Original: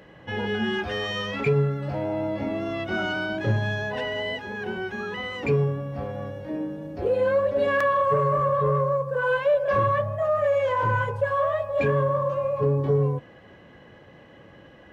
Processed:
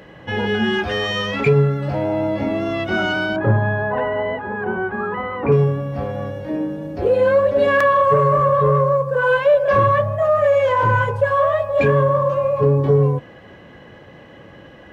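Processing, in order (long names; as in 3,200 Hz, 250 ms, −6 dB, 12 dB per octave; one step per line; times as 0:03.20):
0:03.36–0:05.52: low-pass with resonance 1,200 Hz, resonance Q 2
level +7 dB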